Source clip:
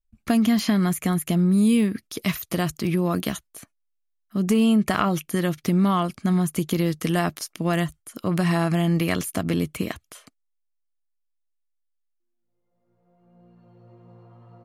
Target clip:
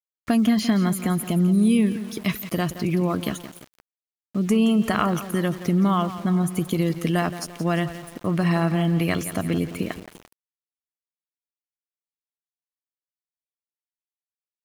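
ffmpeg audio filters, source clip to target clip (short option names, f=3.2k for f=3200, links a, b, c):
-af "afftdn=nr=13:nf=-39,aecho=1:1:172|344|516|688|860:0.224|0.107|0.0516|0.0248|0.0119,aeval=exprs='val(0)*gte(abs(val(0)),0.0112)':c=same"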